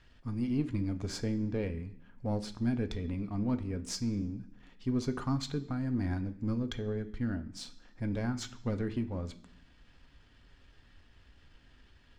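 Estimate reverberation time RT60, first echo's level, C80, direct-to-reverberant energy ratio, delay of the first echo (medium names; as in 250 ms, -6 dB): 0.65 s, no echo, 17.5 dB, 7.0 dB, no echo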